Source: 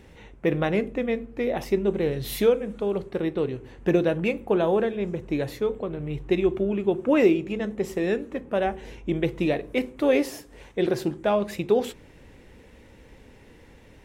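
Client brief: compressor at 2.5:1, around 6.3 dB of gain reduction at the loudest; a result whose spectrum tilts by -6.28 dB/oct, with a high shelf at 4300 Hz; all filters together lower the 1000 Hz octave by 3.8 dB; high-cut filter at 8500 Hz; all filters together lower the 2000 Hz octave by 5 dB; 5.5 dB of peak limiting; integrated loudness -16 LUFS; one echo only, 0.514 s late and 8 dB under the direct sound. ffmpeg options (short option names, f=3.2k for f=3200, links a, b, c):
-af "lowpass=8.5k,equalizer=f=1k:t=o:g=-4.5,equalizer=f=2k:t=o:g=-6.5,highshelf=f=4.3k:g=5,acompressor=threshold=-24dB:ratio=2.5,alimiter=limit=-21dB:level=0:latency=1,aecho=1:1:514:0.398,volume=15dB"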